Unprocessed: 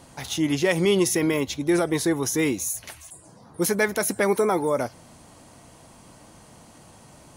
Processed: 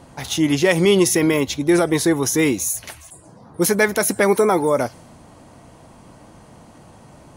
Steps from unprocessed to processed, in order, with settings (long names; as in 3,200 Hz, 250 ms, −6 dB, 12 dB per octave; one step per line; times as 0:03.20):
one half of a high-frequency compander decoder only
level +5.5 dB